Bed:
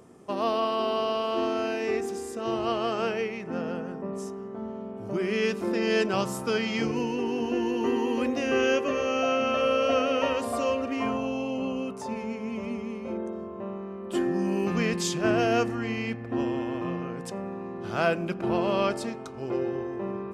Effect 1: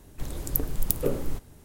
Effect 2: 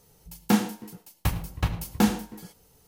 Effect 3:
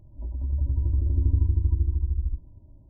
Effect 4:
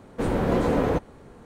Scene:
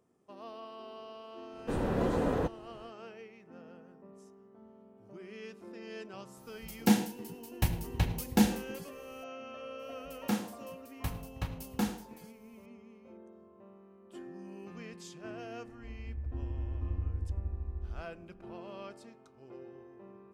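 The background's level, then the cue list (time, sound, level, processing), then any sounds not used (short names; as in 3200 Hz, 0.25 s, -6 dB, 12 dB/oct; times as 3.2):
bed -20 dB
1.49 add 4 -7.5 dB, fades 0.10 s + notch 2200 Hz, Q 9.5
6.37 add 2 -3 dB + bell 1200 Hz -11 dB 0.38 oct
9.79 add 2 -10.5 dB
15.65 add 3 -13 dB
not used: 1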